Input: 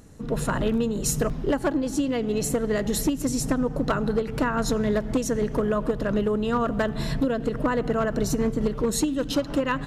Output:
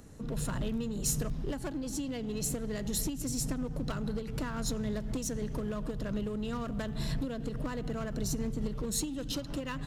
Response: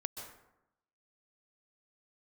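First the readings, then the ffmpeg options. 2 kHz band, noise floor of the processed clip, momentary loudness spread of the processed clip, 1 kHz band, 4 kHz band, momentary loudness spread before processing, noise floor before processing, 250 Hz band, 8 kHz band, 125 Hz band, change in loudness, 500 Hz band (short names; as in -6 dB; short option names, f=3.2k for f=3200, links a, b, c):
-13.0 dB, -39 dBFS, 4 LU, -14.5 dB, -6.0 dB, 2 LU, -33 dBFS, -10.0 dB, -4.5 dB, -6.0 dB, -10.0 dB, -14.0 dB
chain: -filter_complex "[0:a]asplit=2[a][b];[b]asoftclip=type=hard:threshold=-30dB,volume=-5dB[c];[a][c]amix=inputs=2:normalize=0,acrossover=split=190|3000[d][e][f];[e]acompressor=threshold=-39dB:ratio=2[g];[d][g][f]amix=inputs=3:normalize=0,volume=-6.5dB"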